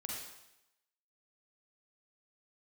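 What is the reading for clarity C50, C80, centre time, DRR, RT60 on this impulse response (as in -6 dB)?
0.0 dB, 3.0 dB, 66 ms, -2.5 dB, 0.90 s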